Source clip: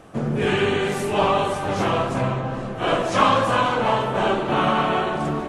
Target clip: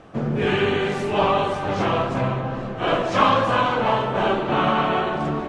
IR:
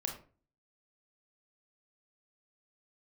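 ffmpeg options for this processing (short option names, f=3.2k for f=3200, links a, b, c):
-af "lowpass=5.1k"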